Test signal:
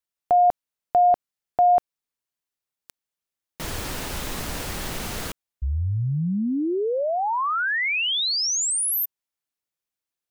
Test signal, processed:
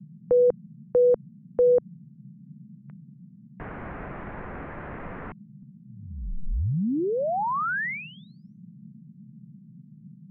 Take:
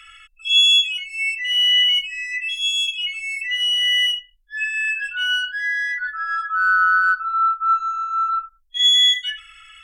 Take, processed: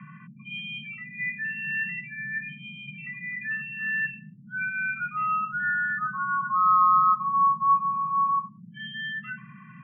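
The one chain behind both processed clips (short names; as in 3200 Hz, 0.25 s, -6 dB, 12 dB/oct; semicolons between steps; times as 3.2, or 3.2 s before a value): mistuned SSB -220 Hz 200–2300 Hz; band noise 130–220 Hz -46 dBFS; air absorption 310 m; gain -1 dB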